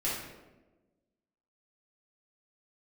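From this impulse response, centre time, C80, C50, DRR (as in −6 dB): 64 ms, 4.5 dB, 0.5 dB, −9.0 dB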